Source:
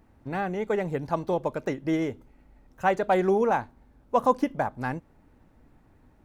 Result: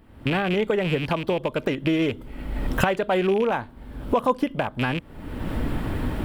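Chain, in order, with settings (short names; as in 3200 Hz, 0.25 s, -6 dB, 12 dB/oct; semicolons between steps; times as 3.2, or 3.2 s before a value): rattling part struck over -37 dBFS, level -29 dBFS; recorder AGC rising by 44 dB/s; thirty-one-band EQ 800 Hz -5 dB, 3150 Hz +8 dB, 6300 Hz -9 dB; in parallel at -2.5 dB: compressor, threshold -35 dBFS, peak gain reduction 18 dB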